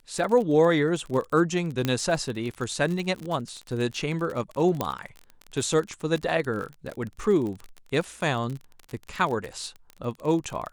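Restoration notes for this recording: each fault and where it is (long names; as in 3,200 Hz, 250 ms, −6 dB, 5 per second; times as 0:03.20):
surface crackle 35 per second −30 dBFS
0:01.85: click −11 dBFS
0:04.81: click −11 dBFS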